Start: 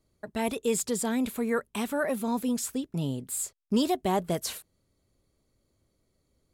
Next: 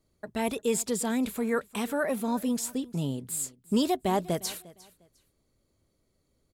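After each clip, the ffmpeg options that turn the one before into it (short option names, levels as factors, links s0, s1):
-af "bandreject=f=60:t=h:w=6,bandreject=f=120:t=h:w=6,aecho=1:1:353|706:0.0891|0.0214"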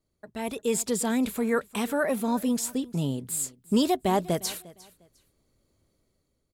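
-af "dynaudnorm=f=170:g=7:m=2.66,volume=0.501"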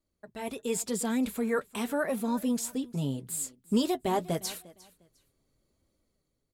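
-af "flanger=delay=3.4:depth=4.3:regen=-45:speed=0.84:shape=sinusoidal"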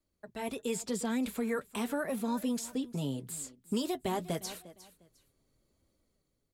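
-filter_complex "[0:a]acrossover=split=270|1300|7300[s0][s1][s2][s3];[s0]acompressor=threshold=0.0158:ratio=4[s4];[s1]acompressor=threshold=0.02:ratio=4[s5];[s2]acompressor=threshold=0.00891:ratio=4[s6];[s3]acompressor=threshold=0.00398:ratio=4[s7];[s4][s5][s6][s7]amix=inputs=4:normalize=0"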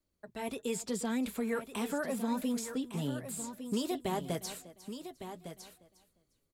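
-af "aecho=1:1:1157:0.316,volume=0.891"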